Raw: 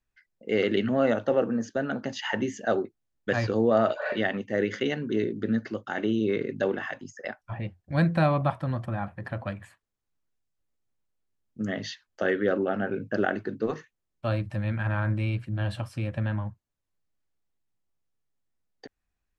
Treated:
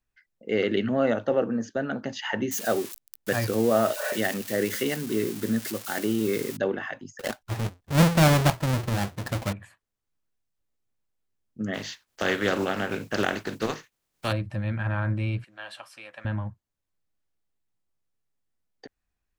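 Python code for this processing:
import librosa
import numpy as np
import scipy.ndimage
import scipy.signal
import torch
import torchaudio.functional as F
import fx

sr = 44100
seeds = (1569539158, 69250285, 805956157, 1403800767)

y = fx.crossing_spikes(x, sr, level_db=-23.5, at=(2.51, 6.57))
y = fx.halfwave_hold(y, sr, at=(7.19, 9.53))
y = fx.spec_flatten(y, sr, power=0.52, at=(11.73, 14.31), fade=0.02)
y = fx.highpass(y, sr, hz=890.0, slope=12, at=(15.44, 16.25))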